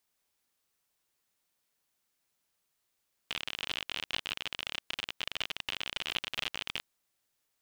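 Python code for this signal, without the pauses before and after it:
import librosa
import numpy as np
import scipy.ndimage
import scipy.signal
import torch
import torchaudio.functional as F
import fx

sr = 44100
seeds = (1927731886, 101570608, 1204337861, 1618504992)

y = fx.geiger_clicks(sr, seeds[0], length_s=3.54, per_s=52.0, level_db=-18.0)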